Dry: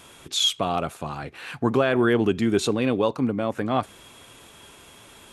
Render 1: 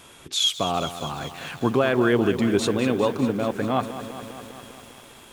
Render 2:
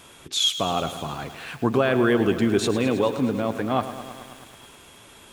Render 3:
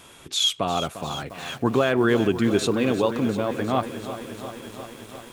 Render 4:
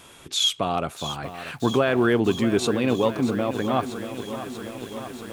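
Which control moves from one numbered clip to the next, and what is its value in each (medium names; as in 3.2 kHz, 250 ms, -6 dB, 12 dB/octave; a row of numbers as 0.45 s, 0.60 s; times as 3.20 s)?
bit-crushed delay, time: 201 ms, 107 ms, 351 ms, 636 ms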